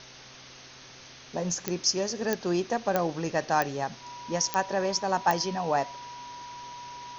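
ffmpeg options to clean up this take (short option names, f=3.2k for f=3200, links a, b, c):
-af "adeclick=t=4,bandreject=f=129.4:t=h:w=4,bandreject=f=258.8:t=h:w=4,bandreject=f=388.2:t=h:w=4,bandreject=f=517.6:t=h:w=4,bandreject=f=647:t=h:w=4,bandreject=f=970:w=30,afwtdn=0.0063"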